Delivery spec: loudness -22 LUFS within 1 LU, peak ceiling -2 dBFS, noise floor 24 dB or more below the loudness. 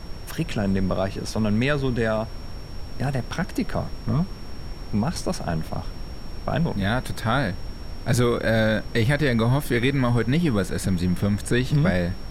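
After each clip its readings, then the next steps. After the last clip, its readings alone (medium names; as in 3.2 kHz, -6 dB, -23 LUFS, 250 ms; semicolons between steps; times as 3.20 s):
steady tone 5.5 kHz; tone level -49 dBFS; noise floor -36 dBFS; noise floor target -49 dBFS; loudness -24.5 LUFS; peak level -9.0 dBFS; loudness target -22.0 LUFS
-> band-stop 5.5 kHz, Q 30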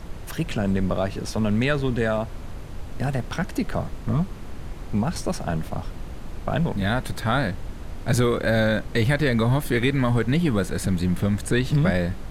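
steady tone not found; noise floor -36 dBFS; noise floor target -49 dBFS
-> noise print and reduce 13 dB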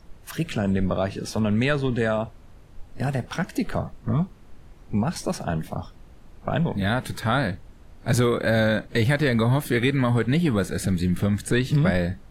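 noise floor -48 dBFS; noise floor target -49 dBFS
-> noise print and reduce 6 dB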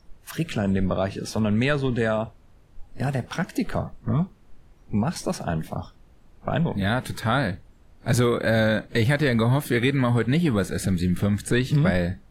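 noise floor -54 dBFS; loudness -24.5 LUFS; peak level -9.0 dBFS; loudness target -22.0 LUFS
-> trim +2.5 dB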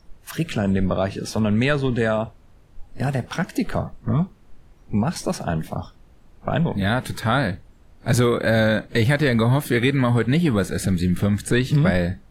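loudness -22.0 LUFS; peak level -6.5 dBFS; noise floor -51 dBFS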